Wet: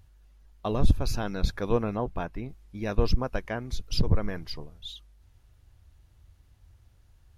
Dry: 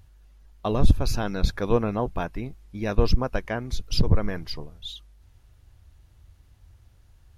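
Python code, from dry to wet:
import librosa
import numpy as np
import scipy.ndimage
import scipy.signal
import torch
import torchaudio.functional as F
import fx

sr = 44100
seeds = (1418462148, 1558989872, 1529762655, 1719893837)

y = fx.high_shelf(x, sr, hz=3900.0, db=-6.0, at=(1.97, 2.49))
y = y * librosa.db_to_amplitude(-3.5)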